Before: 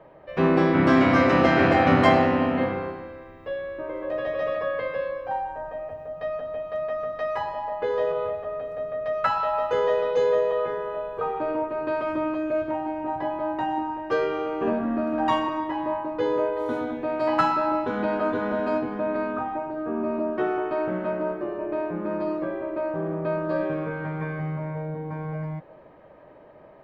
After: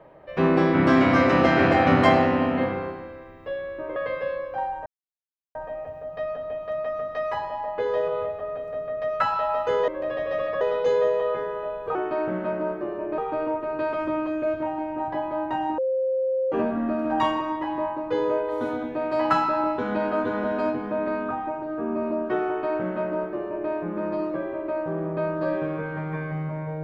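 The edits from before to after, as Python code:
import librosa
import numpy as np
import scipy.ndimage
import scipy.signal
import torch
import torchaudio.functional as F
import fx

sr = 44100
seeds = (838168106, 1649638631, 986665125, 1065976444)

y = fx.edit(x, sr, fx.move(start_s=3.96, length_s=0.73, to_s=9.92),
    fx.insert_silence(at_s=5.59, length_s=0.69),
    fx.bleep(start_s=13.86, length_s=0.74, hz=525.0, db=-21.0),
    fx.duplicate(start_s=20.55, length_s=1.23, to_s=11.26), tone=tone)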